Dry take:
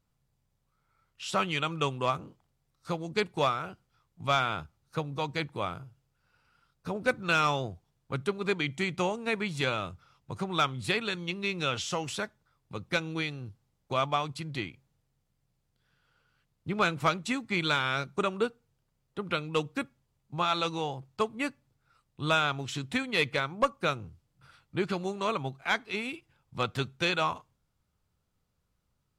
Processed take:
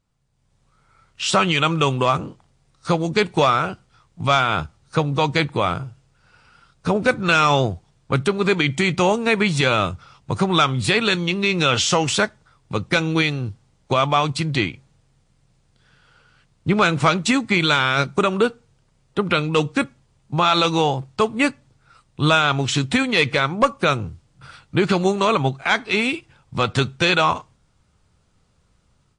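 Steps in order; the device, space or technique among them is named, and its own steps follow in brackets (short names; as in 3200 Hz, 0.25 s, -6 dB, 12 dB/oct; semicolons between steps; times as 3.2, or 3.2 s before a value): low-bitrate web radio (AGC gain up to 12 dB; limiter -10.5 dBFS, peak gain reduction 6.5 dB; gain +4 dB; MP3 48 kbps 22050 Hz)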